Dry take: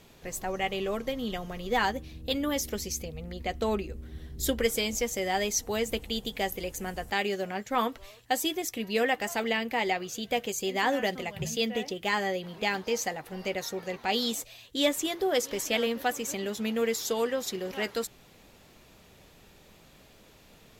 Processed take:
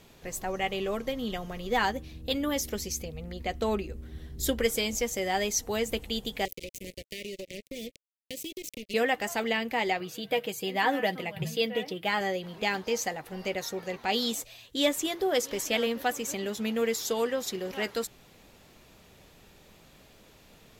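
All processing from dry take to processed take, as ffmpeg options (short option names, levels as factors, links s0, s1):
-filter_complex "[0:a]asettb=1/sr,asplit=3[s0][s1][s2];[s0]atrim=end=6.454[s3];[s1]atrim=start=6.45:end=8.94,asetpts=PTS-STARTPTS,afade=t=in:d=0.004:c=qsin,afade=t=out:st=2.486:d=0.004:c=qsin,acrusher=bits=4:mix=0:aa=0.5,asuperstop=centerf=1100:order=12:qfactor=0.73,acompressor=threshold=0.0178:ratio=6:attack=3.2:release=140:knee=1:detection=peak[s4];[s2]atrim=start=8.936[s5];[s3][s4]acrossfade=d=0.004:c1=hsin:c2=qsin[s6];[s6][s5]acrossfade=d=0.004:c1=qsin:c2=hsin,asettb=1/sr,asplit=3[s7][s8][s9];[s7]atrim=end=10.004[s10];[s8]atrim=start=10:end=12.21,asetpts=PTS-STARTPTS,afade=t=in:d=0.004:c=qsin,afade=t=out:st=2.206:d=0.004:c=qsin,highpass=100,equalizer=f=6600:t=o:w=0.54:g=-11,aecho=1:1:6.3:0.45,atrim=end_sample=97461[s11];[s9]atrim=start=12.206[s12];[s10][s11]acrossfade=d=0.004:c1=hsin:c2=qsin[s13];[s13][s12]acrossfade=d=0.004:c1=qsin:c2=hsin"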